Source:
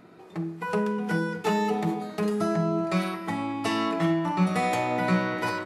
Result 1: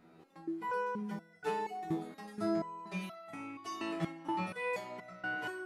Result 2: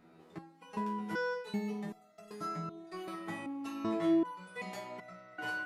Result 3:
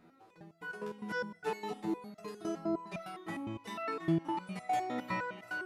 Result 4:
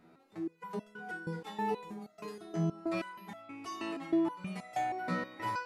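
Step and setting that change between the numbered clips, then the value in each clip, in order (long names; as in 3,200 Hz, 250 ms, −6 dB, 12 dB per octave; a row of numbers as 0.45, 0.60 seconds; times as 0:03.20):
step-sequenced resonator, speed: 4.2, 2.6, 9.8, 6.3 Hertz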